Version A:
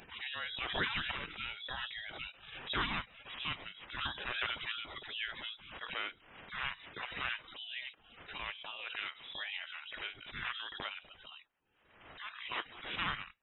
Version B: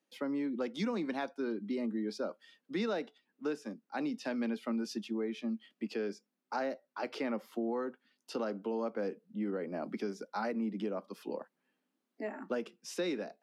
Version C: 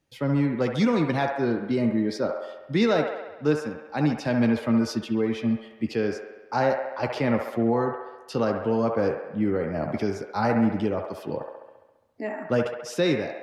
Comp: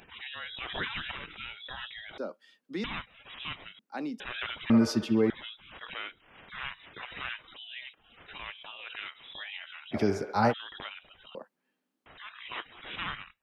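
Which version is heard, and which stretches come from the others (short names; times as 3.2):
A
2.18–2.84 from B
3.79–4.2 from B
4.7–5.3 from C
9.94–10.51 from C, crossfade 0.06 s
11.35–12.06 from B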